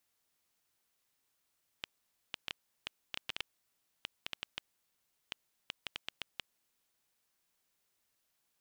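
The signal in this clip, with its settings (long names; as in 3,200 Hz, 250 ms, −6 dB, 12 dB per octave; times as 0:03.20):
Geiger counter clicks 4.9 per second −19.5 dBFS 4.93 s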